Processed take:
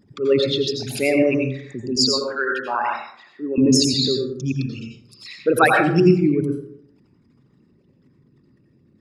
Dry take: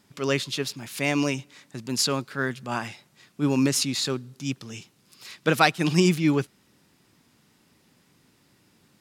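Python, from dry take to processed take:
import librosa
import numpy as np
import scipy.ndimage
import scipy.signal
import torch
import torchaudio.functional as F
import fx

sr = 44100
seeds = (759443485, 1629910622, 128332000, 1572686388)

y = fx.envelope_sharpen(x, sr, power=3.0)
y = fx.highpass(y, sr, hz=500.0, slope=12, at=(1.96, 3.58))
y = fx.rev_plate(y, sr, seeds[0], rt60_s=0.66, hf_ratio=0.45, predelay_ms=75, drr_db=0.5)
y = fx.rider(y, sr, range_db=3, speed_s=2.0)
y = F.gain(torch.from_numpy(y), 3.5).numpy()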